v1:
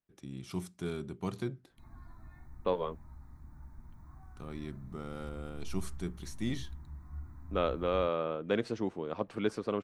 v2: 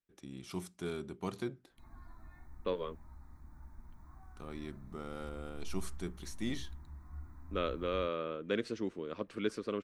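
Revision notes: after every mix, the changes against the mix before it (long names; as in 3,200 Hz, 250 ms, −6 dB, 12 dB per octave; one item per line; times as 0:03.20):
second voice: add parametric band 790 Hz −13.5 dB 0.73 octaves
master: add parametric band 120 Hz −7.5 dB 1.4 octaves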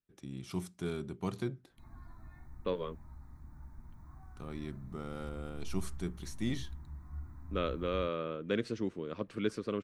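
master: add parametric band 120 Hz +7.5 dB 1.4 octaves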